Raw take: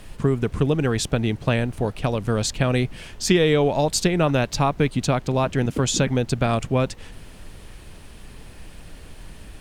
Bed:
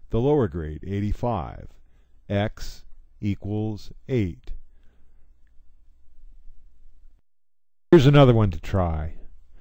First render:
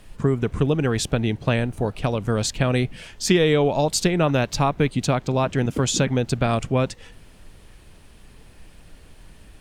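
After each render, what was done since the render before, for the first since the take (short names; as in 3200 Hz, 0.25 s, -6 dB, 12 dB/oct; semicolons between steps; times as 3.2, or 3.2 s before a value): noise print and reduce 6 dB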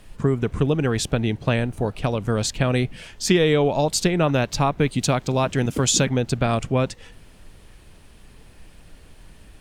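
4.87–6.09 high shelf 3600 Hz +6.5 dB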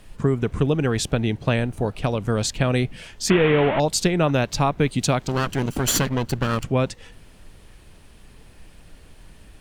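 3.3–3.8 delta modulation 16 kbps, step -17 dBFS; 5.28–6.64 minimum comb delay 0.67 ms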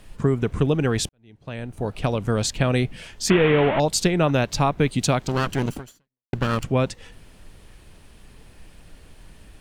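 1.09–1.99 fade in quadratic; 5.73–6.33 fade out exponential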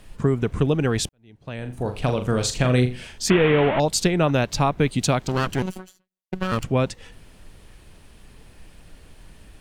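1.58–3.18 flutter echo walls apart 6.9 m, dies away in 0.31 s; 5.62–6.52 robotiser 186 Hz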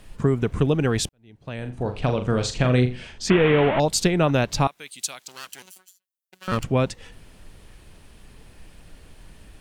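1.7–3.46 air absorption 69 m; 4.67–6.48 differentiator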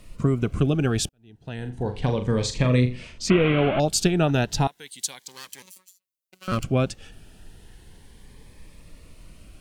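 cascading phaser rising 0.33 Hz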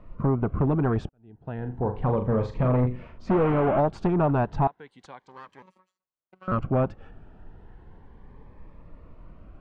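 overloaded stage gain 18.5 dB; synth low-pass 1100 Hz, resonance Q 1.6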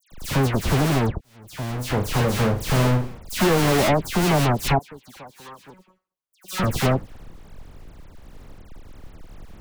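half-waves squared off; dispersion lows, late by 0.118 s, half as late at 2300 Hz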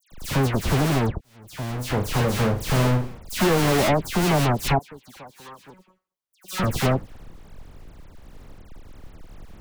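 gain -1 dB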